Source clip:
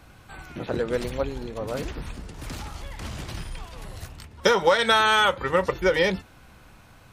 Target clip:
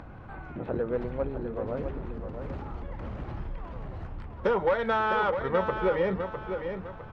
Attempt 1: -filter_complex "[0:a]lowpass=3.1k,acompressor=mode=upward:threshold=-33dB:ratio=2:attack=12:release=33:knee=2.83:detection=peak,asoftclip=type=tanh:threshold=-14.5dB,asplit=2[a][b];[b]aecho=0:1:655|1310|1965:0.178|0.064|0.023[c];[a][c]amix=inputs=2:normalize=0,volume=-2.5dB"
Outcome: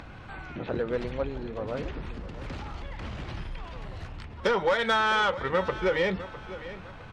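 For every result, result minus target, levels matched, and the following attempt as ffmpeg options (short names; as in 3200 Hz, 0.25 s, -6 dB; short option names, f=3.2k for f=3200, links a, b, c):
4000 Hz band +10.5 dB; echo-to-direct -7.5 dB
-filter_complex "[0:a]lowpass=1.2k,acompressor=mode=upward:threshold=-33dB:ratio=2:attack=12:release=33:knee=2.83:detection=peak,asoftclip=type=tanh:threshold=-14.5dB,asplit=2[a][b];[b]aecho=0:1:655|1310|1965:0.178|0.064|0.023[c];[a][c]amix=inputs=2:normalize=0,volume=-2.5dB"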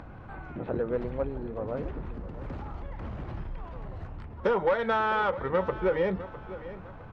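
echo-to-direct -7.5 dB
-filter_complex "[0:a]lowpass=1.2k,acompressor=mode=upward:threshold=-33dB:ratio=2:attack=12:release=33:knee=2.83:detection=peak,asoftclip=type=tanh:threshold=-14.5dB,asplit=2[a][b];[b]aecho=0:1:655|1310|1965|2620:0.422|0.152|0.0547|0.0197[c];[a][c]amix=inputs=2:normalize=0,volume=-2.5dB"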